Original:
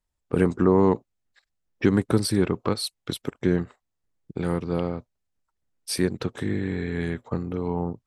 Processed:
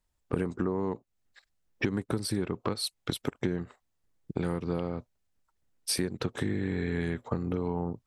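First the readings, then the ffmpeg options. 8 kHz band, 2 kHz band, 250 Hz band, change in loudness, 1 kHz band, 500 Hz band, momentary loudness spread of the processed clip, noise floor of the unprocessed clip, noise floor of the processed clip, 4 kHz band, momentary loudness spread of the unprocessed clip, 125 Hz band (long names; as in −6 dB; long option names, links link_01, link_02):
−2.0 dB, −4.0 dB, −7.5 dB, −7.0 dB, −7.5 dB, −8.5 dB, 6 LU, −80 dBFS, −77 dBFS, −3.0 dB, 11 LU, −6.5 dB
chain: -af "acompressor=threshold=-29dB:ratio=10,volume=3dB"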